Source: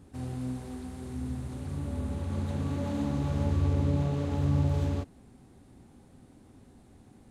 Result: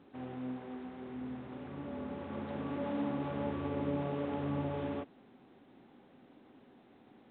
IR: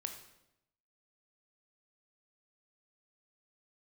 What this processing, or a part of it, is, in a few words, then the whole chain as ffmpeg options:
telephone: -af "highpass=280,lowpass=3100" -ar 8000 -c:a pcm_alaw

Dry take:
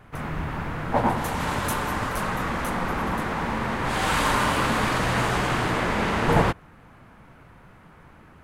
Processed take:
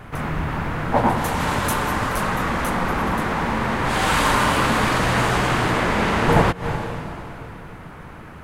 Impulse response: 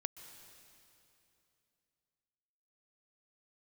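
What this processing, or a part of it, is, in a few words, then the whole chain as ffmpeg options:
ducked reverb: -filter_complex "[0:a]asplit=3[s0][s1][s2];[1:a]atrim=start_sample=2205[s3];[s1][s3]afir=irnorm=-1:irlink=0[s4];[s2]apad=whole_len=372170[s5];[s4][s5]sidechaincompress=threshold=0.00891:ratio=8:attack=6.2:release=110,volume=1.88[s6];[s0][s6]amix=inputs=2:normalize=0,volume=1.41"

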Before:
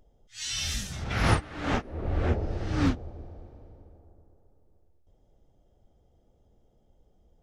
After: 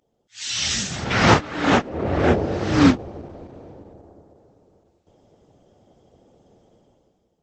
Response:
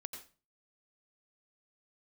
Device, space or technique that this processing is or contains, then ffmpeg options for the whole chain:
video call: -af "highpass=150,dynaudnorm=f=110:g=11:m=5.96" -ar 48000 -c:a libopus -b:a 12k

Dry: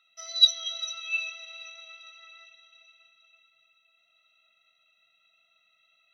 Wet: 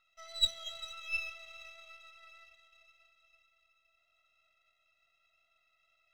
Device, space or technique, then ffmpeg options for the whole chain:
crystal radio: -af "highpass=240,lowpass=2500,aeval=exprs='if(lt(val(0),0),0.447*val(0),val(0))':c=same,equalizer=f=99:t=o:w=0.87:g=-5"

